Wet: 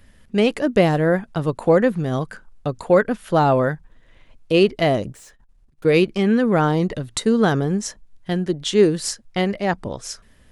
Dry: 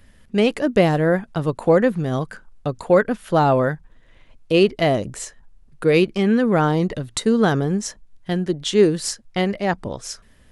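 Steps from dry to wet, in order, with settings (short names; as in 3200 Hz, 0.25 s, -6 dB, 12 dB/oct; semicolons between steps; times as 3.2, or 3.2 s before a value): 5.12–5.85 tube stage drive 44 dB, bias 0.6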